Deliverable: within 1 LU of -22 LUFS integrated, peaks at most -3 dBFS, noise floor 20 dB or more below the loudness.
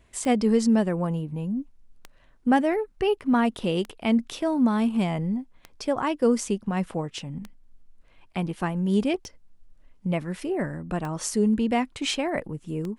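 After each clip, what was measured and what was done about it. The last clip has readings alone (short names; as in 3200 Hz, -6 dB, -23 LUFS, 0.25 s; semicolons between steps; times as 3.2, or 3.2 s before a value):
clicks 8; loudness -26.0 LUFS; peak -9.0 dBFS; loudness target -22.0 LUFS
-> de-click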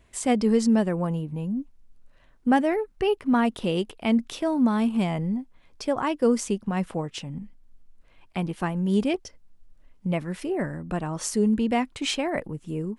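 clicks 0; loudness -26.0 LUFS; peak -9.0 dBFS; loudness target -22.0 LUFS
-> gain +4 dB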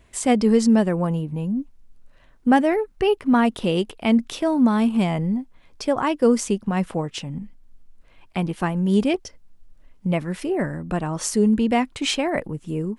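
loudness -22.0 LUFS; peak -5.0 dBFS; noise floor -53 dBFS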